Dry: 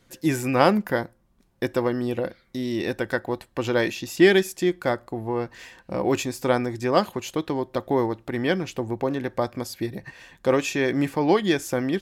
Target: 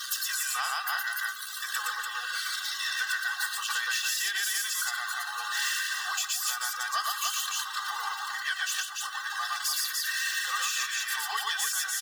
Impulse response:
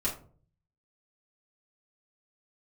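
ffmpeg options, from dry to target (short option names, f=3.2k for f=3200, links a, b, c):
-filter_complex "[0:a]aeval=exprs='val(0)+0.5*0.075*sgn(val(0))':c=same,highpass=f=1.3k:w=0.5412,highpass=f=1.3k:w=1.3066,equalizer=f=2.3k:t=o:w=0.34:g=-14.5,aecho=1:1:2.6:0.59,aecho=1:1:116.6|291.5:0.891|0.708,asplit=2[a][b];[1:a]atrim=start_sample=2205[c];[b][c]afir=irnorm=-1:irlink=0,volume=-21dB[d];[a][d]amix=inputs=2:normalize=0,afftdn=nr=18:nf=-35,acrusher=bits=8:mix=0:aa=0.000001,alimiter=limit=-19dB:level=0:latency=1:release=359"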